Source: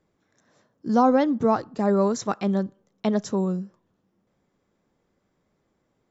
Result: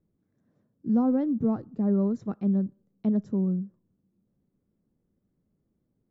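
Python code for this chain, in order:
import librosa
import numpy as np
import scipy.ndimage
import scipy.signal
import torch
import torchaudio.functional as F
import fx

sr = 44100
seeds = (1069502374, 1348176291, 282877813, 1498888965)

y = fx.curve_eq(x, sr, hz=(220.0, 910.0, 1400.0, 6600.0), db=(0, -18, -18, -29))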